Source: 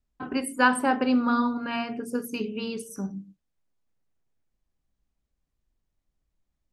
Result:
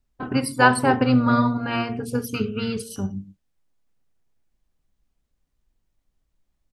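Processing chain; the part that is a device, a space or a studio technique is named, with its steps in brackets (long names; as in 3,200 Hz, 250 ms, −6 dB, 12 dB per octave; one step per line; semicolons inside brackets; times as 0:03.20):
octave pedal (pitch-shifted copies added −12 semitones −6 dB)
level +4 dB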